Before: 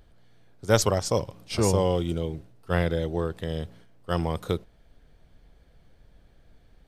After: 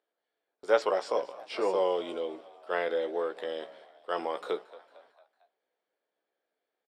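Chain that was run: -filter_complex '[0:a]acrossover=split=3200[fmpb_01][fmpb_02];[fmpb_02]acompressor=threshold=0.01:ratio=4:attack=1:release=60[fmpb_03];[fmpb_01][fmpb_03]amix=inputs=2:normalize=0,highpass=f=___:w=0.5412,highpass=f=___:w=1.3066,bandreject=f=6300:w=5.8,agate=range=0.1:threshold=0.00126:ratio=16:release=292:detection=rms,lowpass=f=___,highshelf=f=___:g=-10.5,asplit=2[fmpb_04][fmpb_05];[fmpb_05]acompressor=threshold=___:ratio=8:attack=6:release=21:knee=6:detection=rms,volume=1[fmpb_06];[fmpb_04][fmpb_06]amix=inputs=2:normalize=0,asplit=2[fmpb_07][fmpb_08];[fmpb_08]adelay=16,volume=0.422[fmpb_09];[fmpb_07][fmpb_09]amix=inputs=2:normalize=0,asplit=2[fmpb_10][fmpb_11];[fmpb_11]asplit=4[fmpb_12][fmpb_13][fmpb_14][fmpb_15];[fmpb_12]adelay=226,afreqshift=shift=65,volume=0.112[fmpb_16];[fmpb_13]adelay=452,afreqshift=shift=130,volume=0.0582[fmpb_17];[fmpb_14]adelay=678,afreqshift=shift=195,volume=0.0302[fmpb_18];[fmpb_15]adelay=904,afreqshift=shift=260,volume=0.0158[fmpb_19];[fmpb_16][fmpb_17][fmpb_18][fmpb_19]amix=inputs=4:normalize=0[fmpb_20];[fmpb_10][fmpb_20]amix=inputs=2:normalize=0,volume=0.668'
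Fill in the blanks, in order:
380, 380, 8300, 5100, 0.00891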